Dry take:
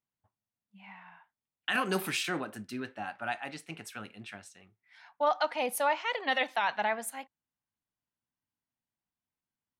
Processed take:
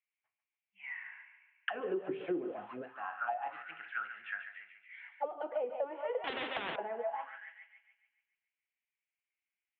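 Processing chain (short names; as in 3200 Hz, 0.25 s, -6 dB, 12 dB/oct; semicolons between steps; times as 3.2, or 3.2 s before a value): thinning echo 0.142 s, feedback 52%, high-pass 430 Hz, level -8.5 dB; soft clip -18.5 dBFS, distortion -22 dB; 2.08–2.82 low shelf 360 Hz +10 dB; reverb RT60 0.35 s, pre-delay 6 ms, DRR 7.5 dB; auto-wah 370–2300 Hz, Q 7.1, down, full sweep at -25.5 dBFS; Chebyshev low-pass 3200 Hz, order 5; tilt +1.5 dB/oct; compressor 6:1, threshold -43 dBFS, peak gain reduction 10 dB; 6.24–6.76 spectral compressor 4:1; gain +11 dB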